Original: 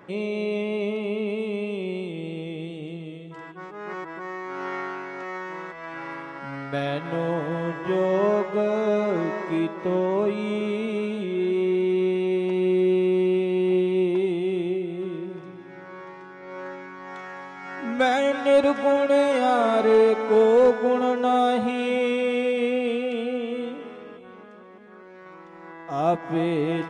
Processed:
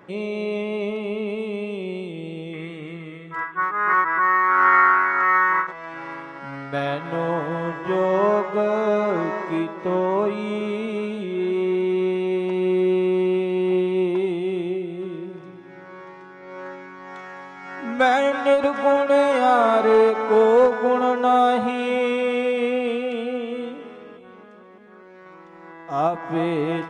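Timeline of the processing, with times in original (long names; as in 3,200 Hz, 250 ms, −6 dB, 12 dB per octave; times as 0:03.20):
0:02.53–0:05.67: flat-topped bell 1,500 Hz +14.5 dB 1.3 octaves
whole clip: dynamic equaliser 1,100 Hz, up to +7 dB, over −36 dBFS, Q 0.98; every ending faded ahead of time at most 150 dB per second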